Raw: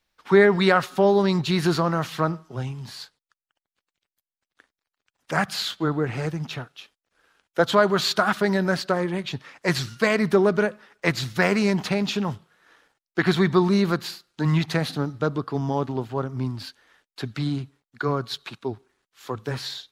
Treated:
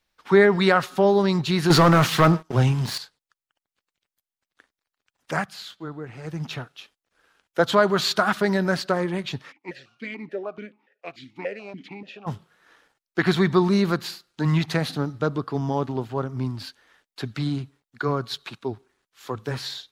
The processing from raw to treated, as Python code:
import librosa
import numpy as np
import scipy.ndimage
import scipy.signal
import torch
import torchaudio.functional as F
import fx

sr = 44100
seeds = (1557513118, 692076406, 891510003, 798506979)

y = fx.leveller(x, sr, passes=3, at=(1.7, 2.98))
y = fx.vowel_held(y, sr, hz=6.9, at=(9.51, 12.26), fade=0.02)
y = fx.edit(y, sr, fx.fade_down_up(start_s=5.32, length_s=1.08, db=-11.0, fade_s=0.17), tone=tone)